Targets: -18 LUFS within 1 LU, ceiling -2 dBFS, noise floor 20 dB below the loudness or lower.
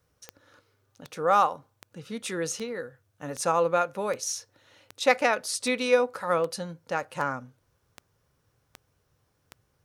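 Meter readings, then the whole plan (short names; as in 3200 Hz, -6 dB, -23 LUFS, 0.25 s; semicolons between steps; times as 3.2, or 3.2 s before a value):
clicks 13; loudness -27.5 LUFS; peak -6.5 dBFS; loudness target -18.0 LUFS
-> de-click; gain +9.5 dB; limiter -2 dBFS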